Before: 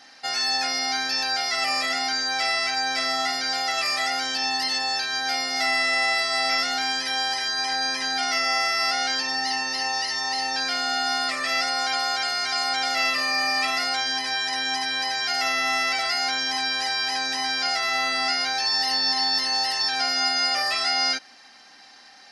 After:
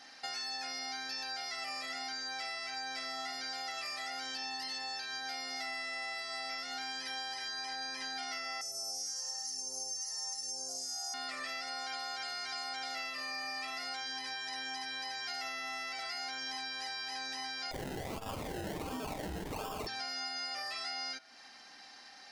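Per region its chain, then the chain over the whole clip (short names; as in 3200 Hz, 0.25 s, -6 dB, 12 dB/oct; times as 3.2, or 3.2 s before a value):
8.61–11.14 EQ curve 180 Hz 0 dB, 290 Hz -7 dB, 480 Hz +7 dB, 760 Hz -2 dB, 2600 Hz -22 dB, 3900 Hz -20 dB, 6000 Hz +11 dB + thin delay 0.106 s, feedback 69%, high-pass 3000 Hz, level -4 dB + phaser stages 2, 1.1 Hz, lowest notch 220–2200 Hz
17.71–19.87 decimation with a swept rate 30×, swing 60% 1.4 Hz + doubler 47 ms -5 dB + core saturation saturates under 140 Hz
whole clip: de-hum 109.8 Hz, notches 39; compressor 4:1, threshold -35 dBFS; gain -4.5 dB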